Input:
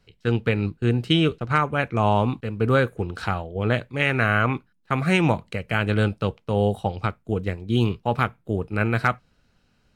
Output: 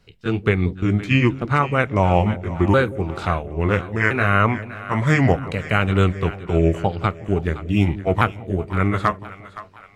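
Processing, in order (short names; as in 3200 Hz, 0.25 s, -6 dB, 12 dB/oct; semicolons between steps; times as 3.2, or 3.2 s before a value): repeated pitch sweeps -4.5 st, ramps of 1.369 s; split-band echo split 610 Hz, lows 0.178 s, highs 0.517 s, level -15 dB; gain +4.5 dB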